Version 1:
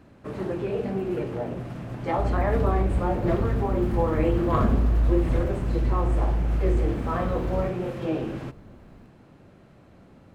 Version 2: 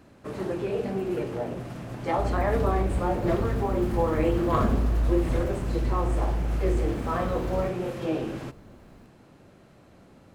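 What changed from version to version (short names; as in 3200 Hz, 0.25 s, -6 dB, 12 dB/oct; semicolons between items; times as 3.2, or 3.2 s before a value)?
master: add tone controls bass -3 dB, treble +6 dB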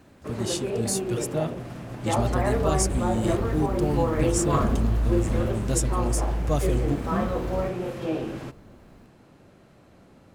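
speech: unmuted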